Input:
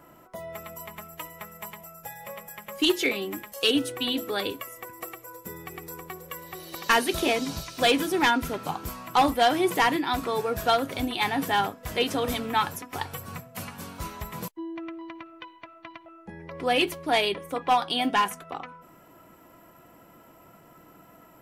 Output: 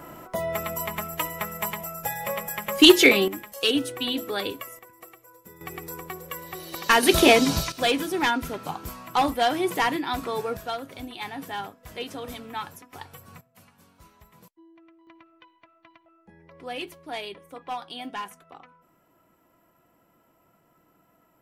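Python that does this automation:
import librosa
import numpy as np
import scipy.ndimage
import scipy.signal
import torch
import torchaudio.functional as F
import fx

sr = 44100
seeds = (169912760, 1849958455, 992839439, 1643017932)

y = fx.gain(x, sr, db=fx.steps((0.0, 10.0), (3.28, 0.0), (4.79, -9.0), (5.61, 2.5), (7.03, 9.0), (7.72, -1.5), (10.57, -9.0), (13.41, -18.0), (15.07, -11.0)))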